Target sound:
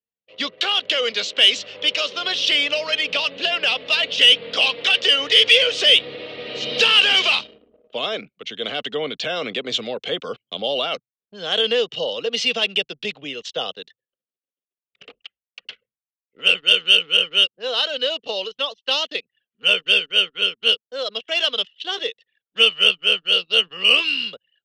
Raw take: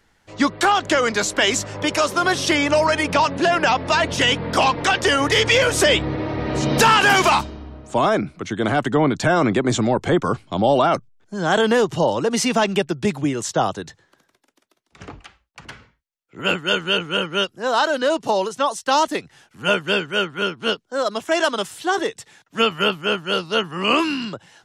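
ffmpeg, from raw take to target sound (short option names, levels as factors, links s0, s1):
-af "highpass=260,equalizer=f=330:t=q:w=4:g=-9,equalizer=f=480:t=q:w=4:g=10,equalizer=f=920:t=q:w=4:g=-9,equalizer=f=1900:t=q:w=4:g=5,equalizer=f=2900:t=q:w=4:g=5,lowpass=f=3600:w=0.5412,lowpass=f=3600:w=1.3066,anlmdn=1,aexciter=amount=8.9:drive=5.7:freq=2700,volume=0.335"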